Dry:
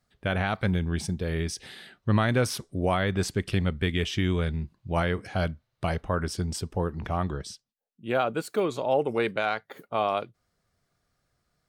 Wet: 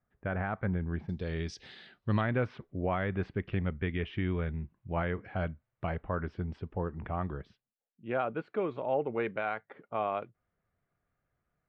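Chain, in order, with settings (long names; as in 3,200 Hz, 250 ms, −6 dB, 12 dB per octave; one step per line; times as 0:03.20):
low-pass filter 1,900 Hz 24 dB per octave, from 0:01.09 5,100 Hz, from 0:02.21 2,500 Hz
level −6 dB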